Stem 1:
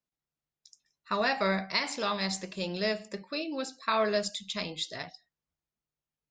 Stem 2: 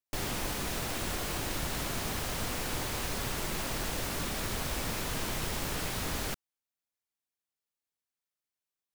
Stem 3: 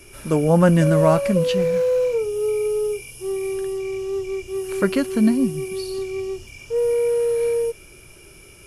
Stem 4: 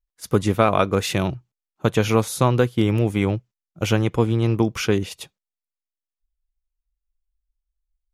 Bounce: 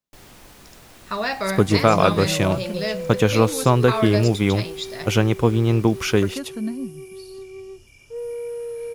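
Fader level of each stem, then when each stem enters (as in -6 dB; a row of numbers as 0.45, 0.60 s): +3.0, -12.0, -10.5, +1.5 dB; 0.00, 0.00, 1.40, 1.25 s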